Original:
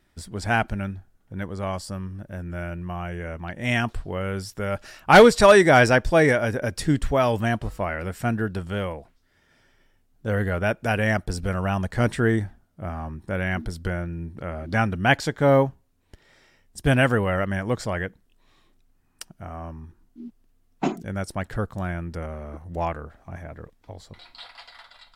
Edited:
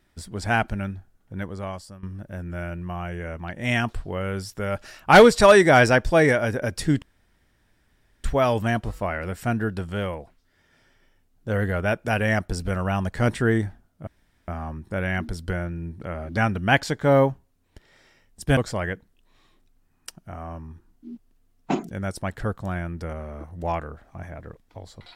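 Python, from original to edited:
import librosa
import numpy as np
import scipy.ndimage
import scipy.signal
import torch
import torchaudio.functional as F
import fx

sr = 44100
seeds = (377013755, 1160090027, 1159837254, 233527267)

y = fx.edit(x, sr, fx.fade_out_to(start_s=1.41, length_s=0.62, floor_db=-15.5),
    fx.insert_room_tone(at_s=7.02, length_s=1.22),
    fx.insert_room_tone(at_s=12.85, length_s=0.41),
    fx.cut(start_s=16.94, length_s=0.76), tone=tone)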